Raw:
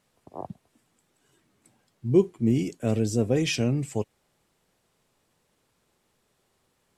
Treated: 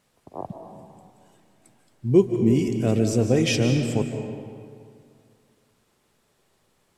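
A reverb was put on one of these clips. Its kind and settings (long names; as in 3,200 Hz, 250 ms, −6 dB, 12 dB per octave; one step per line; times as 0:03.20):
comb and all-pass reverb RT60 2.2 s, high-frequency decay 0.65×, pre-delay 110 ms, DRR 5.5 dB
level +3 dB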